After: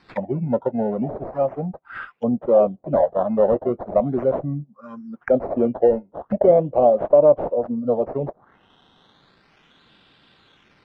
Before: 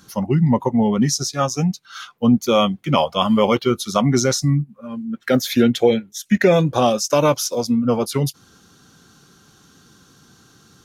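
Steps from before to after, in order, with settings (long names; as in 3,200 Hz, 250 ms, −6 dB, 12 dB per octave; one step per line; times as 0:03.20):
0:00.91–0:01.66: linear delta modulator 64 kbit/s, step −32.5 dBFS
low-shelf EQ 200 Hz −8 dB
sample-and-hold swept by an LFO 13×, swing 100% 0.37 Hz
envelope-controlled low-pass 620–4,000 Hz down, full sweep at −24 dBFS
level −5.5 dB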